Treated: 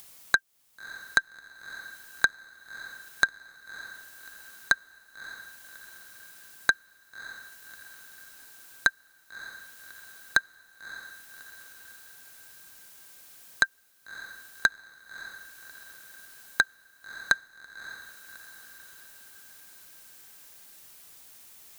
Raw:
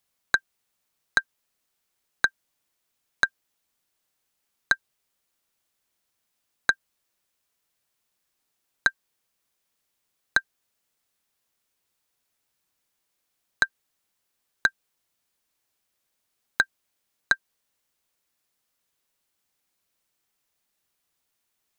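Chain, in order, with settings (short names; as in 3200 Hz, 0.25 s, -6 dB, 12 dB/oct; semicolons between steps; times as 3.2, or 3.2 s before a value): high shelf 6000 Hz +7 dB; upward compressor, threshold -32 dBFS; diffused feedback echo 0.601 s, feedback 52%, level -14.5 dB; gain -1 dB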